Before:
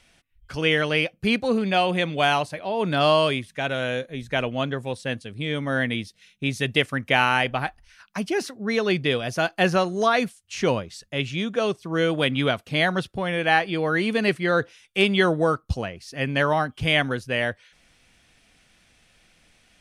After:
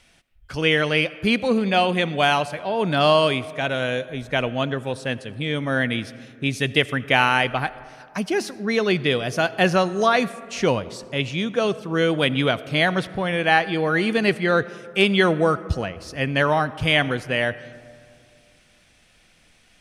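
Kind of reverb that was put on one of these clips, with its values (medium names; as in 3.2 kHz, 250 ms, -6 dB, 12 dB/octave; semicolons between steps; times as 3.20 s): algorithmic reverb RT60 2.4 s, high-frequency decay 0.35×, pre-delay 40 ms, DRR 17 dB; trim +2 dB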